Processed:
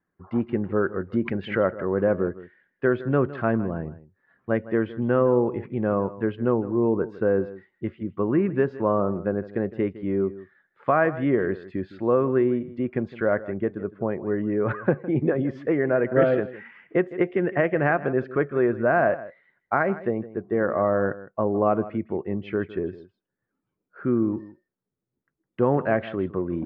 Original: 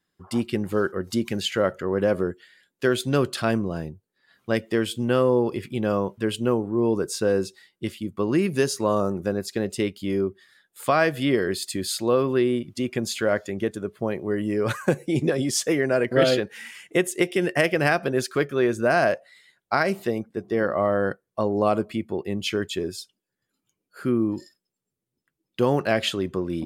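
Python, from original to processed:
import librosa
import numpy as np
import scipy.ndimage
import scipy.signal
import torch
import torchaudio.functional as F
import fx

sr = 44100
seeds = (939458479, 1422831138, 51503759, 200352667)

p1 = scipy.signal.sosfilt(scipy.signal.butter(4, 1800.0, 'lowpass', fs=sr, output='sos'), x)
p2 = p1 + fx.echo_single(p1, sr, ms=159, db=-16.5, dry=0)
y = fx.pre_swell(p2, sr, db_per_s=140.0, at=(1.13, 1.86), fade=0.02)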